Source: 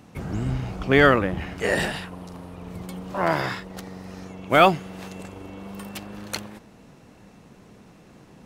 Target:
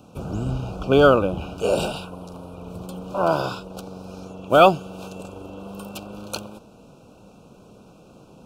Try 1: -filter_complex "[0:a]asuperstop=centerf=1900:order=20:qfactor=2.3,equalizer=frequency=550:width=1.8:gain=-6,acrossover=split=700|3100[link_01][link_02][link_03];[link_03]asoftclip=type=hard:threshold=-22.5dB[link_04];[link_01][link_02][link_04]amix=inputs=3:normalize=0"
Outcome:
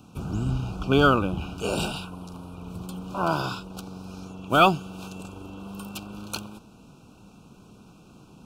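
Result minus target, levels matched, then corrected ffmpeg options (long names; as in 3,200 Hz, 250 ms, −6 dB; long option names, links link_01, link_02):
hard clipping: distortion +11 dB; 500 Hz band −3.5 dB
-filter_complex "[0:a]asuperstop=centerf=1900:order=20:qfactor=2.3,equalizer=frequency=550:width=1.8:gain=5.5,acrossover=split=700|3100[link_01][link_02][link_03];[link_03]asoftclip=type=hard:threshold=-16dB[link_04];[link_01][link_02][link_04]amix=inputs=3:normalize=0"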